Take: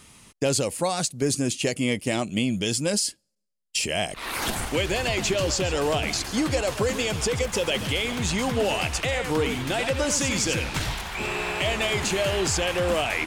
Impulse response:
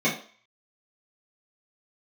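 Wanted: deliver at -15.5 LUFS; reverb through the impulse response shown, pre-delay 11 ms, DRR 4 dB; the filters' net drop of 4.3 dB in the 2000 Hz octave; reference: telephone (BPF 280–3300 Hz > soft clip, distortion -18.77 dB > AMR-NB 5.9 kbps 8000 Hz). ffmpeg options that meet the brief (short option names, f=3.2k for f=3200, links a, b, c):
-filter_complex "[0:a]equalizer=f=2k:t=o:g=-4.5,asplit=2[a][b];[1:a]atrim=start_sample=2205,adelay=11[c];[b][c]afir=irnorm=-1:irlink=0,volume=-19dB[d];[a][d]amix=inputs=2:normalize=0,highpass=280,lowpass=3.3k,asoftclip=threshold=-17.5dB,volume=14.5dB" -ar 8000 -c:a libopencore_amrnb -b:a 5900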